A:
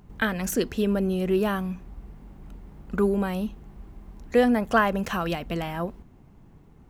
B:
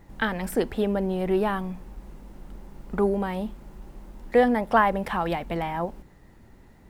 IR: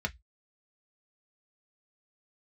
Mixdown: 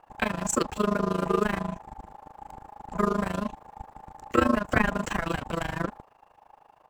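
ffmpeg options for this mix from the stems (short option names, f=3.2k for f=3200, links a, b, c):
-filter_complex "[0:a]acrossover=split=340|3000[a][b][c];[b]acompressor=threshold=-30dB:ratio=2[d];[a][d][c]amix=inputs=3:normalize=0,lowpass=f=7.6k:t=q:w=7.8,acrusher=bits=5:mix=0:aa=0.5,volume=0.5dB[e];[1:a]aeval=exprs='val(0)*sin(2*PI*830*n/s)':c=same,adelay=0.4,volume=1.5dB[f];[e][f]amix=inputs=2:normalize=0,highshelf=f=4.6k:g=-6.5,tremolo=f=26:d=0.919"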